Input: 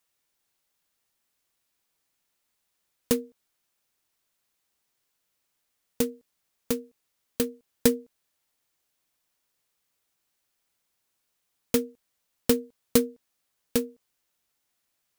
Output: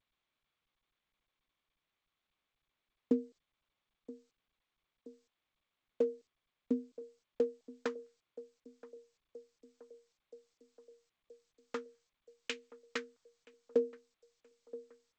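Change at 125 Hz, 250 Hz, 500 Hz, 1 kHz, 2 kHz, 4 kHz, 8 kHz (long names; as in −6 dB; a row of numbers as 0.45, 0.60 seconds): below −20 dB, −10.5 dB, −7.0 dB, −7.5 dB, −6.5 dB, −13.0 dB, below −20 dB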